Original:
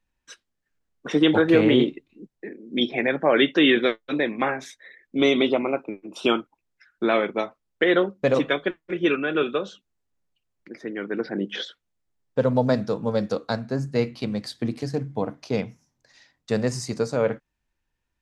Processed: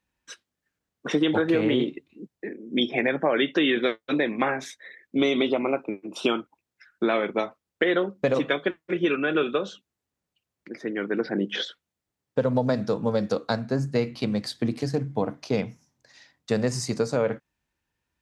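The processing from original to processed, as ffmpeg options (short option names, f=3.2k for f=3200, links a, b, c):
-filter_complex "[0:a]asettb=1/sr,asplit=3[a][b][c];[a]atrim=end=2.534[d];[b]atrim=start=2.53:end=3.47,asetpts=PTS-STARTPTS,afade=t=in:d=0.004:c=qsin,afade=t=out:st=0.936:d=0.004:c=qsin,asuperstop=centerf=4300:order=8:qfactor=3.8[e];[c]atrim=start=3.466[f];[d][e]acrossfade=d=0.004:c1=hsin:c2=qsin[g];[g][f]acrossfade=d=0.004:c1=qsin:c2=hsin,highpass=67,acompressor=threshold=-21dB:ratio=5,volume=2dB"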